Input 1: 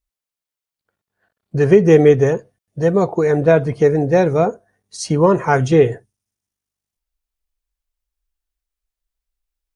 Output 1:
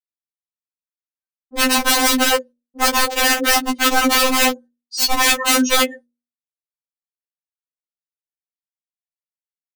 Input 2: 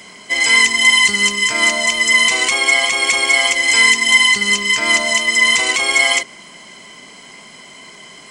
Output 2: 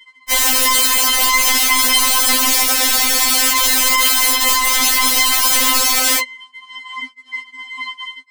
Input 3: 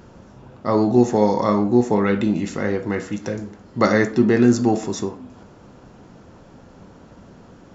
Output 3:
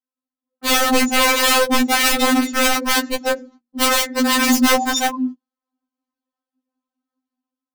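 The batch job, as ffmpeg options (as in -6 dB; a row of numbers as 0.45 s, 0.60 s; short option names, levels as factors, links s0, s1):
-filter_complex "[0:a]acrossover=split=200|610|1300|6300[s0][s1][s2][s3][s4];[s0]acompressor=threshold=0.0178:ratio=4[s5];[s1]acompressor=threshold=0.141:ratio=4[s6];[s2]acompressor=threshold=0.0158:ratio=4[s7];[s3]acompressor=threshold=0.224:ratio=4[s8];[s4]acompressor=threshold=0.0398:ratio=4[s9];[s5][s6][s7][s8][s9]amix=inputs=5:normalize=0,afftdn=nr=21:nf=-30,equalizer=f=500:t=o:w=1:g=-4,equalizer=f=1000:t=o:w=1:g=10,equalizer=f=4000:t=o:w=1:g=9,agate=range=0.0158:threshold=0.00891:ratio=16:detection=peak,lowshelf=f=190:g=-3,bandreject=f=60:t=h:w=6,bandreject=f=120:t=h:w=6,bandreject=f=180:t=h:w=6,bandreject=f=240:t=h:w=6,bandreject=f=300:t=h:w=6,bandreject=f=360:t=h:w=6,bandreject=f=420:t=h:w=6,bandreject=f=480:t=h:w=6,dynaudnorm=f=150:g=7:m=2.66,highpass=f=57:w=0.5412,highpass=f=57:w=1.3066,aeval=exprs='(mod(4.47*val(0)+1,2)-1)/4.47':c=same,afftfilt=real='re*3.46*eq(mod(b,12),0)':imag='im*3.46*eq(mod(b,12),0)':win_size=2048:overlap=0.75,volume=2"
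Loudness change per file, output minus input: -0.5 LU, +0.5 LU, +3.0 LU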